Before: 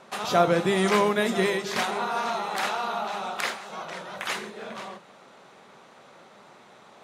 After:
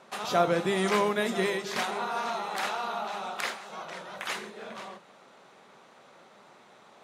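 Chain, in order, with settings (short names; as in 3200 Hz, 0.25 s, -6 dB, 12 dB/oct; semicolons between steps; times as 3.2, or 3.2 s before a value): low shelf 88 Hz -8 dB; gain -3.5 dB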